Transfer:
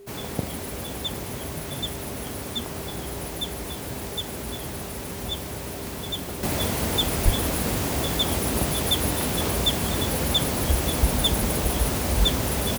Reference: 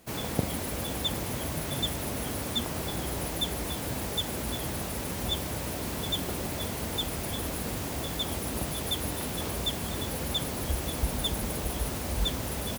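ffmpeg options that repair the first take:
ffmpeg -i in.wav -filter_complex "[0:a]adeclick=threshold=4,bandreject=frequency=400:width=30,asplit=3[link_01][link_02][link_03];[link_01]afade=type=out:start_time=7.24:duration=0.02[link_04];[link_02]highpass=frequency=140:width=0.5412,highpass=frequency=140:width=1.3066,afade=type=in:start_time=7.24:duration=0.02,afade=type=out:start_time=7.36:duration=0.02[link_05];[link_03]afade=type=in:start_time=7.36:duration=0.02[link_06];[link_04][link_05][link_06]amix=inputs=3:normalize=0,asetnsamples=nb_out_samples=441:pad=0,asendcmd='6.43 volume volume -8dB',volume=0dB" out.wav

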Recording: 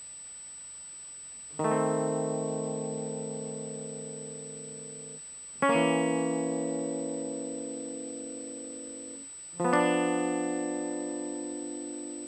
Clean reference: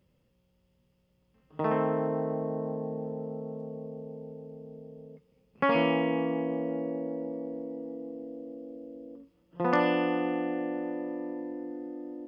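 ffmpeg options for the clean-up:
ffmpeg -i in.wav -af "bandreject=frequency=8000:width=30,afftdn=noise_reduction=24:noise_floor=-45" out.wav

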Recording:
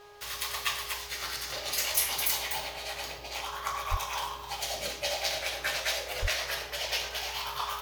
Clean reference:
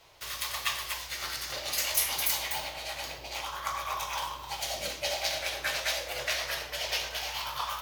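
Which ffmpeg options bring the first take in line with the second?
ffmpeg -i in.wav -filter_complex "[0:a]bandreject=frequency=412.1:width_type=h:width=4,bandreject=frequency=824.2:width_type=h:width=4,bandreject=frequency=1236.3:width_type=h:width=4,bandreject=frequency=1648.4:width_type=h:width=4,asplit=3[link_01][link_02][link_03];[link_01]afade=type=out:start_time=3.9:duration=0.02[link_04];[link_02]highpass=frequency=140:width=0.5412,highpass=frequency=140:width=1.3066,afade=type=in:start_time=3.9:duration=0.02,afade=type=out:start_time=4.02:duration=0.02[link_05];[link_03]afade=type=in:start_time=4.02:duration=0.02[link_06];[link_04][link_05][link_06]amix=inputs=3:normalize=0,asplit=3[link_07][link_08][link_09];[link_07]afade=type=out:start_time=6.21:duration=0.02[link_10];[link_08]highpass=frequency=140:width=0.5412,highpass=frequency=140:width=1.3066,afade=type=in:start_time=6.21:duration=0.02,afade=type=out:start_time=6.33:duration=0.02[link_11];[link_09]afade=type=in:start_time=6.33:duration=0.02[link_12];[link_10][link_11][link_12]amix=inputs=3:normalize=0" out.wav

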